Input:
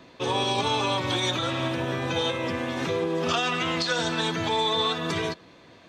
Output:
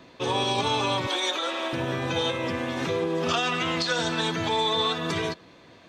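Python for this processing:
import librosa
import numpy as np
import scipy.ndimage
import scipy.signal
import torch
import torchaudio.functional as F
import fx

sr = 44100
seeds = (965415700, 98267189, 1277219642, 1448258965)

y = fx.highpass(x, sr, hz=360.0, slope=24, at=(1.07, 1.73))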